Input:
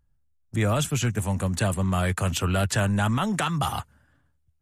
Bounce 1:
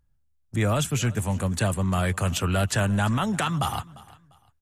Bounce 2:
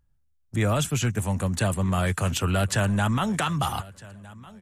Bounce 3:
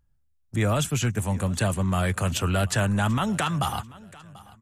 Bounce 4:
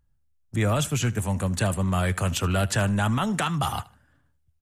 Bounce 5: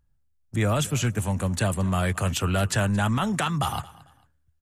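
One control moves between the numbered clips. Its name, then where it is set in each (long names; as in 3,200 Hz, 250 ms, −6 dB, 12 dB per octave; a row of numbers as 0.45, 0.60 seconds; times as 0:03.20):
repeating echo, delay time: 348, 1,259, 738, 76, 223 milliseconds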